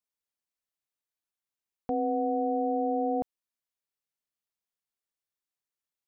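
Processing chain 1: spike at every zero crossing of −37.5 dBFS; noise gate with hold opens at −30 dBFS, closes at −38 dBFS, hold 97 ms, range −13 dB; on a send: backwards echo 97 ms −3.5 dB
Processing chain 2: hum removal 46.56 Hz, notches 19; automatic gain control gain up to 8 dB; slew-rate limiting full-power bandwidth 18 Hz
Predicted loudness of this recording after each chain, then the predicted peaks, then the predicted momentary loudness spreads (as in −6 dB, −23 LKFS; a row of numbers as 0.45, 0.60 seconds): −28.0, −30.0 LKFS; −18.5, −17.5 dBFS; 11, 7 LU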